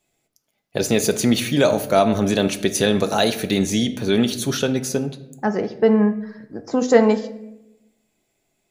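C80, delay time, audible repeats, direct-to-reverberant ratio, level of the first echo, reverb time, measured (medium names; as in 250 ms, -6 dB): 16.0 dB, no echo, no echo, 7.5 dB, no echo, 0.90 s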